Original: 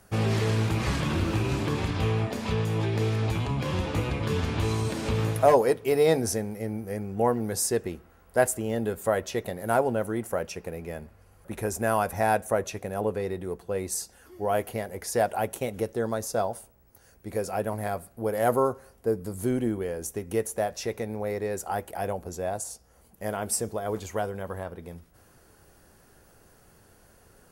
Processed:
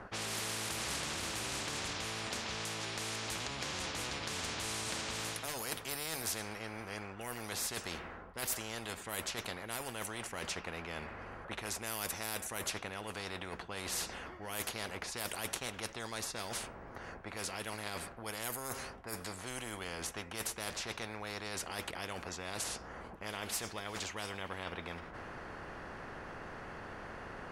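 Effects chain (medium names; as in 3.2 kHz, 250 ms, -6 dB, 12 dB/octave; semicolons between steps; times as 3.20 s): level-controlled noise filter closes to 1.4 kHz, open at -20 dBFS; reverse; compression 10:1, threshold -37 dBFS, peak gain reduction 23 dB; reverse; spectrum-flattening compressor 4:1; trim +11.5 dB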